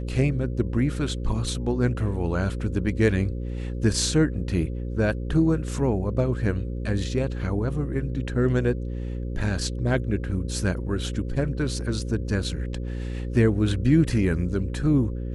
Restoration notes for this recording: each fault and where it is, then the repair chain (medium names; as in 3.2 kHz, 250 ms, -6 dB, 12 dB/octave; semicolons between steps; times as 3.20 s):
buzz 60 Hz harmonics 9 -30 dBFS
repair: de-hum 60 Hz, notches 9